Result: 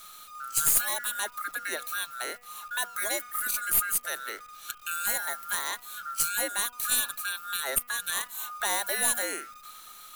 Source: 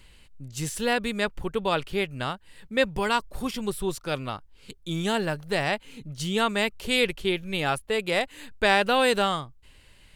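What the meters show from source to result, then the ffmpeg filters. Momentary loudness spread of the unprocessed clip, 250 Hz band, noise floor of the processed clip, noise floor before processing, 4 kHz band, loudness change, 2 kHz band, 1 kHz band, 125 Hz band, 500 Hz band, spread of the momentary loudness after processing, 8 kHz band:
12 LU, -19.5 dB, -50 dBFS, -55 dBFS, -5.0 dB, -1.5 dB, -3.5 dB, -6.5 dB, -22.5 dB, -14.5 dB, 14 LU, +12.0 dB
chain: -filter_complex "[0:a]afftfilt=real='real(if(lt(b,960),b+48*(1-2*mod(floor(b/48),2)),b),0)':imag='imag(if(lt(b,960),b+48*(1-2*mod(floor(b/48),2)),b),0)':win_size=2048:overlap=0.75,aemphasis=mode=production:type=riaa,afreqshift=190,bandreject=f=5.4k:w=5.6,adynamicequalizer=threshold=0.0178:dfrequency=1200:dqfactor=1:tfrequency=1200:tqfactor=1:attack=5:release=100:ratio=0.375:range=2:mode=boostabove:tftype=bell,acrossover=split=190|720|7100[a][b][c][d];[c]acompressor=threshold=-34dB:ratio=8[e];[d]aeval=exprs='0.355*(cos(1*acos(clip(val(0)/0.355,-1,1)))-cos(1*PI/2))+0.1*(cos(2*acos(clip(val(0)/0.355,-1,1)))-cos(2*PI/2))+0.0316*(cos(3*acos(clip(val(0)/0.355,-1,1)))-cos(3*PI/2))+0.0355*(cos(5*acos(clip(val(0)/0.355,-1,1)))-cos(5*PI/2))+0.00794*(cos(6*acos(clip(val(0)/0.355,-1,1)))-cos(6*PI/2))':c=same[f];[a][b][e][f]amix=inputs=4:normalize=0,acrusher=bits=9:dc=4:mix=0:aa=0.000001,bandreject=f=243.7:t=h:w=4,bandreject=f=487.4:t=h:w=4,bandreject=f=731.1:t=h:w=4,bandreject=f=974.8:t=h:w=4,bandreject=f=1.2185k:t=h:w=4,bandreject=f=1.4622k:t=h:w=4,bandreject=f=1.7059k:t=h:w=4,bandreject=f=1.9496k:t=h:w=4,bandreject=f=2.1933k:t=h:w=4,bandreject=f=2.437k:t=h:w=4,bandreject=f=2.6807k:t=h:w=4,bandreject=f=2.9244k:t=h:w=4,bandreject=f=3.1681k:t=h:w=4"

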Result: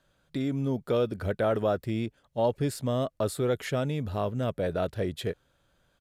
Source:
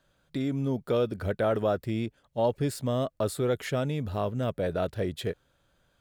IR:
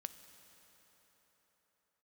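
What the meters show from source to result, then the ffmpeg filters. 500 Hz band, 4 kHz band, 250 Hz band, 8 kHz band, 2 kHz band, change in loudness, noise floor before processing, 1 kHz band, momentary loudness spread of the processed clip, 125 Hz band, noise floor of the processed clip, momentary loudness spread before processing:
0.0 dB, 0.0 dB, 0.0 dB, 0.0 dB, 0.0 dB, 0.0 dB, -71 dBFS, 0.0 dB, 6 LU, 0.0 dB, -71 dBFS, 6 LU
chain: -af "aresample=32000,aresample=44100"

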